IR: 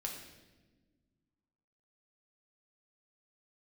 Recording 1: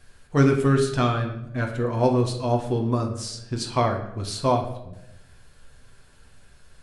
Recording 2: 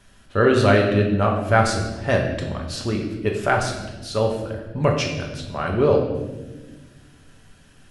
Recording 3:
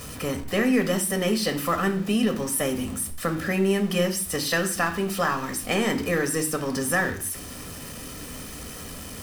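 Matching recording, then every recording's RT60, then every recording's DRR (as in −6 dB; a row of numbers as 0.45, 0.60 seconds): 2; 0.90 s, non-exponential decay, 0.50 s; 1.0, 0.0, 5.5 decibels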